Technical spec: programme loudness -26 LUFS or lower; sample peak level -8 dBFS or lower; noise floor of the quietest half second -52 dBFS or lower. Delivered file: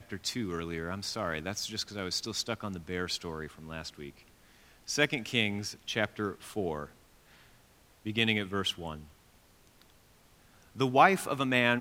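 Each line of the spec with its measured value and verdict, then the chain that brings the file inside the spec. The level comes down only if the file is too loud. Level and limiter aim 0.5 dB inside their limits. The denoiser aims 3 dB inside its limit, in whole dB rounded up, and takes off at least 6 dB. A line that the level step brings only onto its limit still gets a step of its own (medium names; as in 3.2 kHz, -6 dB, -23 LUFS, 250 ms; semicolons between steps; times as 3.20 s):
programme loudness -31.5 LUFS: pass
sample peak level -7.5 dBFS: fail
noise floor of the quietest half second -62 dBFS: pass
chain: peak limiter -8.5 dBFS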